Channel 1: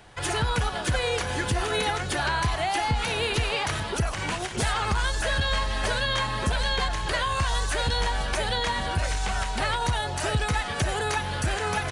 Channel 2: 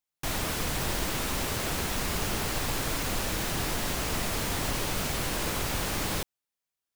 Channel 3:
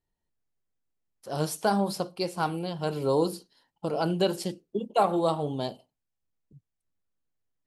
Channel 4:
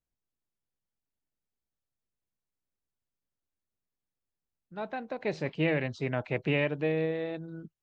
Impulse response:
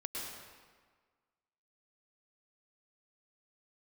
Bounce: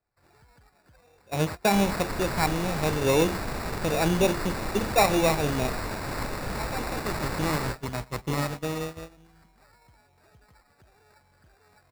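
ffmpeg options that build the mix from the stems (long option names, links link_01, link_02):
-filter_complex "[0:a]volume=-15dB[link_01];[1:a]adelay=1500,volume=-3.5dB,asplit=2[link_02][link_03];[link_03]volume=-9dB[link_04];[2:a]bass=frequency=250:gain=2,treble=frequency=4000:gain=-5,volume=2dB[link_05];[3:a]highshelf=frequency=3700:gain=6,aecho=1:1:1:0.41,adelay=1800,volume=-1.5dB,asplit=3[link_06][link_07][link_08];[link_07]volume=-19dB[link_09];[link_08]volume=-9.5dB[link_10];[4:a]atrim=start_sample=2205[link_11];[link_04][link_09]amix=inputs=2:normalize=0[link_12];[link_12][link_11]afir=irnorm=-1:irlink=0[link_13];[link_10]aecho=0:1:105:1[link_14];[link_01][link_02][link_05][link_06][link_13][link_14]amix=inputs=6:normalize=0,agate=range=-18dB:threshold=-31dB:ratio=16:detection=peak,acrusher=samples=14:mix=1:aa=0.000001"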